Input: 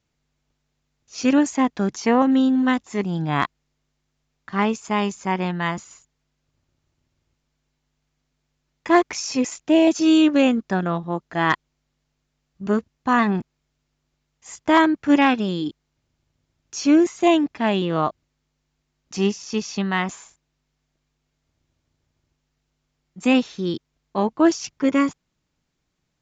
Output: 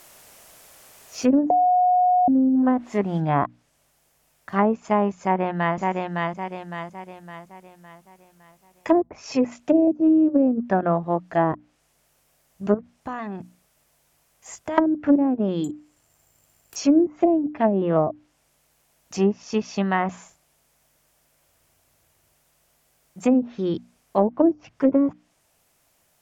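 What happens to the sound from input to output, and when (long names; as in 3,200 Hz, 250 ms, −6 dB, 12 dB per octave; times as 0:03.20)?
0:01.50–0:02.28: beep over 726 Hz −6.5 dBFS
0:03.20: noise floor change −48 dB −64 dB
0:05.22–0:05.77: delay throw 560 ms, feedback 45%, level −3 dB
0:12.74–0:14.78: downward compressor, threshold −30 dBFS
0:15.64–0:16.76: bad sample-rate conversion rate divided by 6×, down filtered, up zero stuff
whole clip: graphic EQ with 15 bands 100 Hz +3 dB, 630 Hz +8 dB, 4,000 Hz −5 dB; treble cut that deepens with the level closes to 330 Hz, closed at −11.5 dBFS; mains-hum notches 60/120/180/240/300 Hz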